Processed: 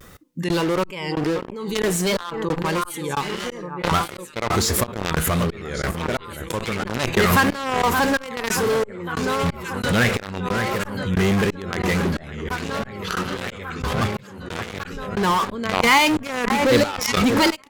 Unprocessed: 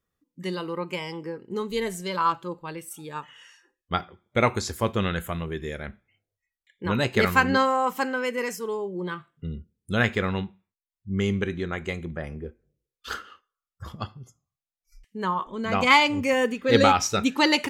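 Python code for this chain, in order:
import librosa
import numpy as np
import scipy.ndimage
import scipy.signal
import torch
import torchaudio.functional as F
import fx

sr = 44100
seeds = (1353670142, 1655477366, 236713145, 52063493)

p1 = x + fx.echo_alternate(x, sr, ms=572, hz=1900.0, feedback_pct=87, wet_db=-13.0, dry=0)
p2 = fx.step_gate(p1, sr, bpm=180, pattern='xx....xx', floor_db=-24.0, edge_ms=4.5)
p3 = fx.fuzz(p2, sr, gain_db=38.0, gate_db=-43.0)
p4 = p2 + (p3 * librosa.db_to_amplitude(-4.0))
p5 = fx.vibrato(p4, sr, rate_hz=1.5, depth_cents=97.0)
p6 = fx.pre_swell(p5, sr, db_per_s=44.0)
y = p6 * librosa.db_to_amplitude(-3.0)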